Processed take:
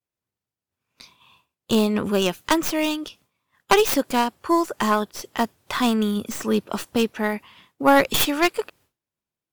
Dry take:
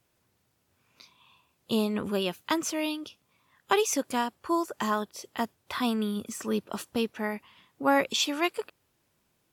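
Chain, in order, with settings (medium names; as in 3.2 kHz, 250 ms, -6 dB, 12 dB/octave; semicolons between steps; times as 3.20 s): tracing distortion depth 0.22 ms; expander -57 dBFS; trim +7.5 dB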